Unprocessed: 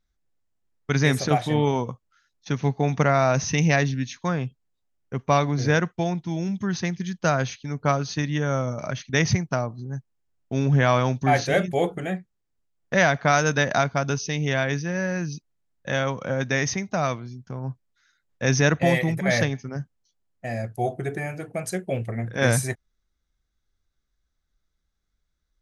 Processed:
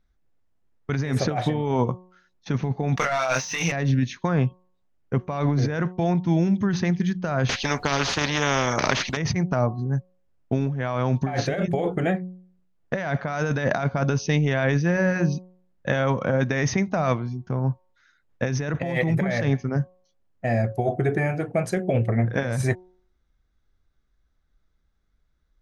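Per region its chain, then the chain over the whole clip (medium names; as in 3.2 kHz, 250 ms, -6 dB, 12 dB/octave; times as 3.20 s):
2.96–3.72 s: band-pass filter 5.9 kHz, Q 0.54 + waveshaping leveller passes 3 + doubling 23 ms -4.5 dB
7.49–9.17 s: tone controls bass -4 dB, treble +2 dB + upward compressor, threshold -42 dBFS + spectrum-flattening compressor 4:1
whole clip: compressor with a negative ratio -26 dBFS, ratio -1; low-pass 1.8 kHz 6 dB/octave; de-hum 182.7 Hz, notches 6; trim +4.5 dB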